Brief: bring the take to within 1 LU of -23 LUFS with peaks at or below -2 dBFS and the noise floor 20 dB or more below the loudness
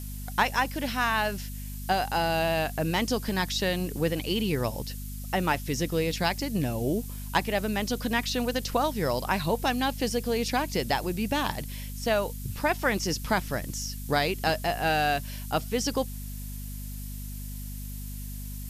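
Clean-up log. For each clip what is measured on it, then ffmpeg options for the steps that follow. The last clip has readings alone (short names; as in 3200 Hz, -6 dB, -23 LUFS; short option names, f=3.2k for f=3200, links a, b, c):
hum 50 Hz; harmonics up to 250 Hz; hum level -35 dBFS; noise floor -37 dBFS; noise floor target -49 dBFS; loudness -28.5 LUFS; peak -11.0 dBFS; loudness target -23.0 LUFS
-> -af "bandreject=f=50:t=h:w=4,bandreject=f=100:t=h:w=4,bandreject=f=150:t=h:w=4,bandreject=f=200:t=h:w=4,bandreject=f=250:t=h:w=4"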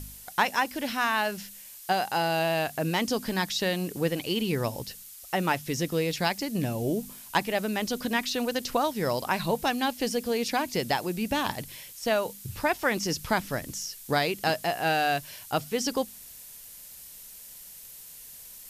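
hum none; noise floor -46 dBFS; noise floor target -49 dBFS
-> -af "afftdn=nr=6:nf=-46"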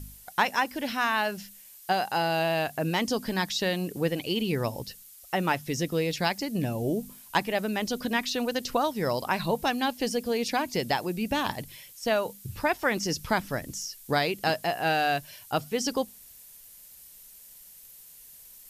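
noise floor -51 dBFS; loudness -28.5 LUFS; peak -11.0 dBFS; loudness target -23.0 LUFS
-> -af "volume=5.5dB"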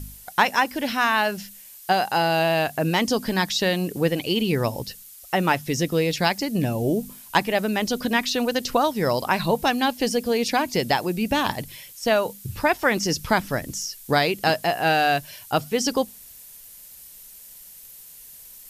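loudness -23.0 LUFS; peak -5.5 dBFS; noise floor -45 dBFS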